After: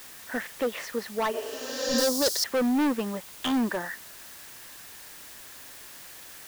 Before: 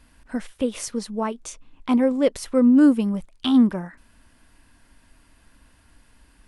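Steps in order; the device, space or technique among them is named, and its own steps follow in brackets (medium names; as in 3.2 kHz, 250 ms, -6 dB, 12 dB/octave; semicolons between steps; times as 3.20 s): drive-through speaker (band-pass 440–2800 Hz; peaking EQ 1.8 kHz +11 dB 0.27 oct; hard clipper -25.5 dBFS, distortion -7 dB; white noise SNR 15 dB); 1.98–2.44 s: resonant high shelf 3.5 kHz +13 dB, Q 3; 1.36–1.99 s: spectral replace 250–7500 Hz both; trim +3.5 dB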